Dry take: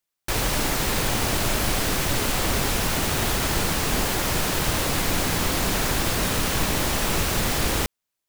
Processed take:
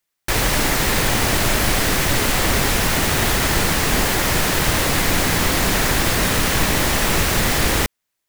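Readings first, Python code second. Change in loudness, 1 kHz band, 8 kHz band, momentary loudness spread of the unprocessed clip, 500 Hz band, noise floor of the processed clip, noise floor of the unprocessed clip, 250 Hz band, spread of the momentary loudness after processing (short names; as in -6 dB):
+5.5 dB, +5.5 dB, +5.0 dB, 0 LU, +5.0 dB, -78 dBFS, -83 dBFS, +5.0 dB, 0 LU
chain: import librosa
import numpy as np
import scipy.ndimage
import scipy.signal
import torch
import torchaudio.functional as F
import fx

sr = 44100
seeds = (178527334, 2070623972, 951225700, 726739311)

y = fx.peak_eq(x, sr, hz=1900.0, db=4.0, octaves=0.5)
y = y * 10.0 ** (5.0 / 20.0)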